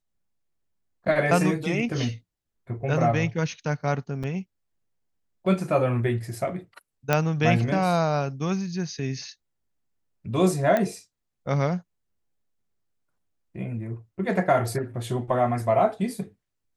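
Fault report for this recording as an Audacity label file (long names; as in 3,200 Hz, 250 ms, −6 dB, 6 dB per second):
4.230000	4.240000	drop-out 6.1 ms
7.130000	7.130000	click −8 dBFS
10.770000	10.770000	click −12 dBFS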